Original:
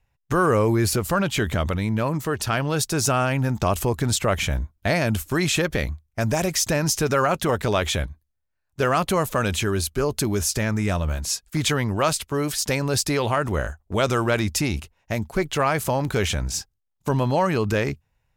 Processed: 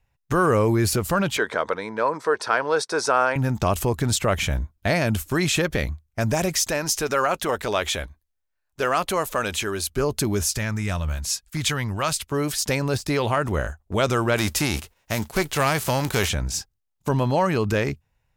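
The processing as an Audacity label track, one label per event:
1.370000	3.360000	cabinet simulation 410–8200 Hz, peaks and dips at 470 Hz +9 dB, 980 Hz +7 dB, 1.5 kHz +6 dB, 2.9 kHz -9 dB, 7 kHz -10 dB
6.630000	9.900000	peaking EQ 120 Hz -11.5 dB 2.1 oct
10.540000	12.270000	peaking EQ 390 Hz -7.5 dB 2.2 oct
12.900000	13.300000	de-esser amount 55%
14.360000	16.280000	formants flattened exponent 0.6

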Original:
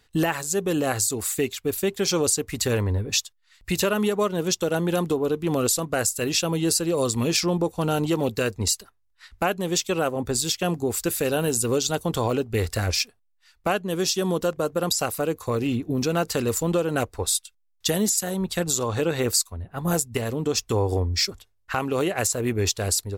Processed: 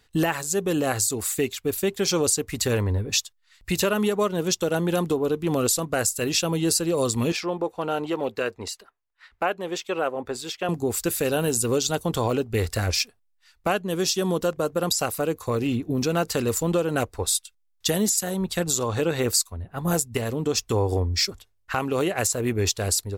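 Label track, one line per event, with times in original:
7.320000	10.690000	tone controls bass -15 dB, treble -14 dB

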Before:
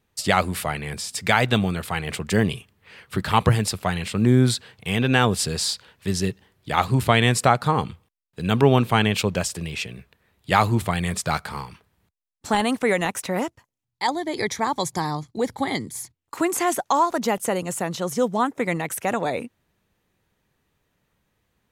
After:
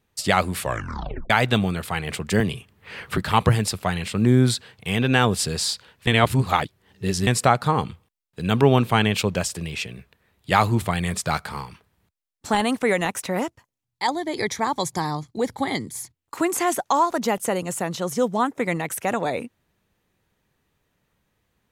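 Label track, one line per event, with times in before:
0.580000	0.580000	tape stop 0.72 s
2.400000	3.180000	three bands compressed up and down depth 70%
6.070000	7.270000	reverse

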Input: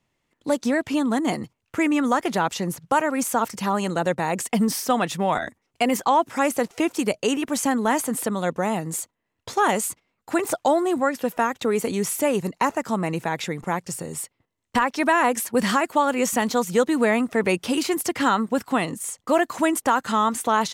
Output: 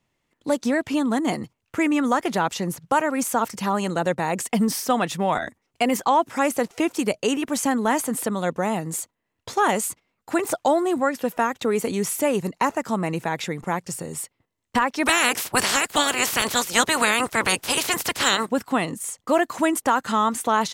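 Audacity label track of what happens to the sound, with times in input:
15.050000	18.450000	spectral peaks clipped ceiling under each frame's peak by 27 dB

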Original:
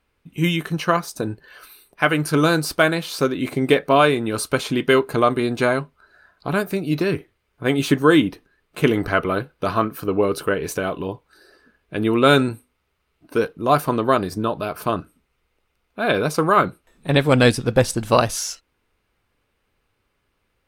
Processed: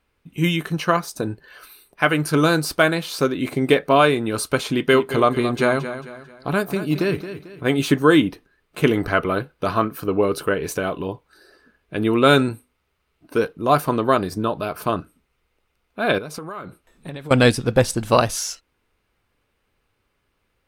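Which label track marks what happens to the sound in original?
4.690000	7.780000	feedback delay 222 ms, feedback 38%, level -11.5 dB
16.180000	17.310000	compression 10:1, threshold -29 dBFS

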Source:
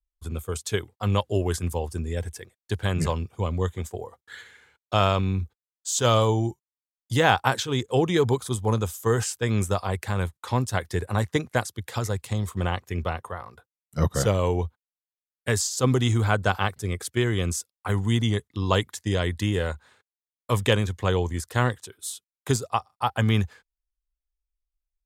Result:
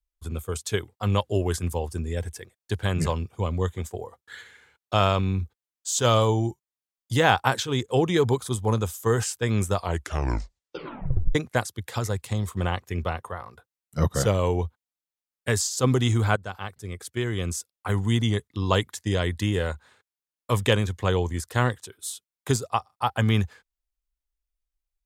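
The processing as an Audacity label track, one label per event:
9.750000	9.750000	tape stop 1.60 s
16.360000	17.950000	fade in, from -15 dB

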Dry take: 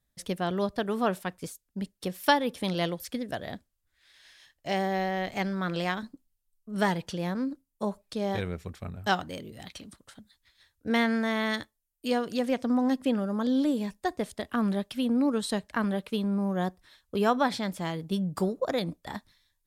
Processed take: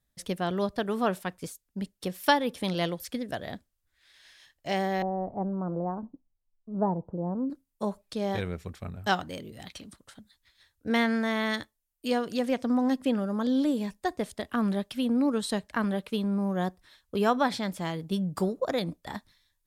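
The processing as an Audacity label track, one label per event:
5.020000	7.500000	steep low-pass 1 kHz

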